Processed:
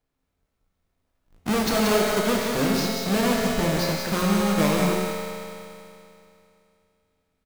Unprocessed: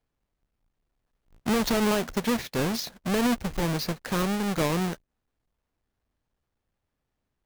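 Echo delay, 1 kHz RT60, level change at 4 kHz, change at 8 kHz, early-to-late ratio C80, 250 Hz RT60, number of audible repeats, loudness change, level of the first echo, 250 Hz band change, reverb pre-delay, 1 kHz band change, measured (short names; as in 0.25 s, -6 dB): 0.183 s, 2.7 s, +5.0 dB, +5.5 dB, -1.0 dB, 2.7 s, 1, +4.0 dB, -5.5 dB, +3.5 dB, 5 ms, +5.0 dB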